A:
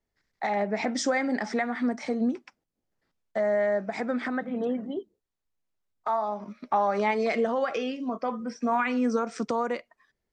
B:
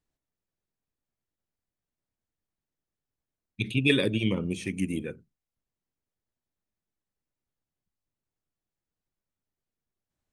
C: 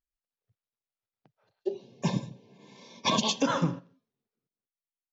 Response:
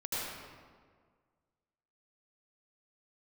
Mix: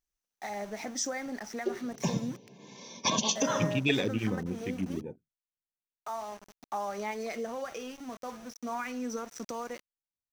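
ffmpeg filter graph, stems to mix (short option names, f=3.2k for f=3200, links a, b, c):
-filter_complex "[0:a]aemphasis=mode=production:type=50fm,aeval=exprs='val(0)*gte(abs(val(0)),0.0178)':c=same,adynamicequalizer=threshold=0.0126:dfrequency=1900:dqfactor=0.7:tfrequency=1900:tqfactor=0.7:attack=5:release=100:ratio=0.375:range=1.5:mode=cutabove:tftype=highshelf,volume=-10dB[a];[1:a]afwtdn=0.0141,volume=-4.5dB[b];[2:a]acompressor=threshold=-33dB:ratio=2,volume=2.5dB[c];[a][b][c]amix=inputs=3:normalize=0,equalizer=f=6k:w=6:g=11"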